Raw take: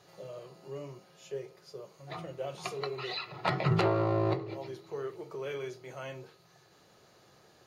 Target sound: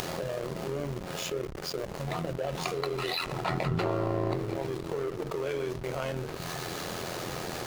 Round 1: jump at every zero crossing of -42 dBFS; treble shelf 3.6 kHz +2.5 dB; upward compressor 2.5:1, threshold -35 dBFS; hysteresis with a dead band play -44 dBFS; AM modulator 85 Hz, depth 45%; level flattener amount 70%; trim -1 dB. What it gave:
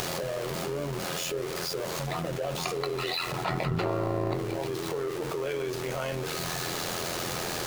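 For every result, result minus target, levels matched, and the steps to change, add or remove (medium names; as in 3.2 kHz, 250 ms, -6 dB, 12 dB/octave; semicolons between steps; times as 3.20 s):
hysteresis with a dead band: distortion -8 dB; jump at every zero crossing: distortion +6 dB
change: hysteresis with a dead band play -37 dBFS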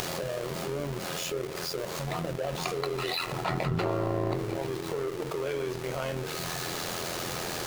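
jump at every zero crossing: distortion +6 dB
change: jump at every zero crossing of -48.5 dBFS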